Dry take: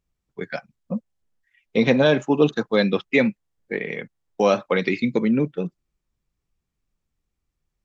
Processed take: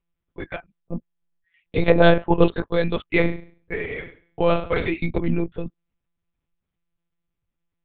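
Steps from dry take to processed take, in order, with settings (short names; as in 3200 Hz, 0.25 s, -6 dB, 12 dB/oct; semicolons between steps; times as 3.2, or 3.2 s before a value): 1.81–2.56 dynamic EQ 750 Hz, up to +8 dB, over -31 dBFS, Q 0.83; 3.11–4.92 flutter echo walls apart 7.8 m, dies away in 0.44 s; monotone LPC vocoder at 8 kHz 170 Hz; gain -1.5 dB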